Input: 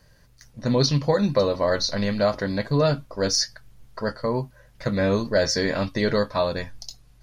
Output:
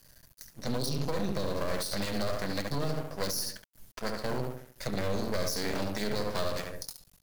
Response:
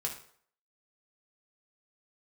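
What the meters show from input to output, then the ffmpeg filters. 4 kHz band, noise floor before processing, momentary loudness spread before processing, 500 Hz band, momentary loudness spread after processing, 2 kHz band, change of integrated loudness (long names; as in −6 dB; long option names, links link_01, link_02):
−9.0 dB, −55 dBFS, 11 LU, −11.5 dB, 8 LU, −8.5 dB, −10.0 dB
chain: -filter_complex "[0:a]asplit=2[link_01][link_02];[link_02]adelay=71,lowpass=frequency=1500:poles=1,volume=-3dB,asplit=2[link_03][link_04];[link_04]adelay=71,lowpass=frequency=1500:poles=1,volume=0.46,asplit=2[link_05][link_06];[link_06]adelay=71,lowpass=frequency=1500:poles=1,volume=0.46,asplit=2[link_07][link_08];[link_08]adelay=71,lowpass=frequency=1500:poles=1,volume=0.46,asplit=2[link_09][link_10];[link_10]adelay=71,lowpass=frequency=1500:poles=1,volume=0.46,asplit=2[link_11][link_12];[link_12]adelay=71,lowpass=frequency=1500:poles=1,volume=0.46[link_13];[link_01][link_03][link_05][link_07][link_09][link_11][link_13]amix=inputs=7:normalize=0,aeval=exprs='max(val(0),0)':channel_layout=same,acrossover=split=480[link_14][link_15];[link_15]acompressor=threshold=-31dB:ratio=4[link_16];[link_14][link_16]amix=inputs=2:normalize=0,aemphasis=mode=production:type=75fm,alimiter=limit=-18.5dB:level=0:latency=1:release=50,volume=-2.5dB"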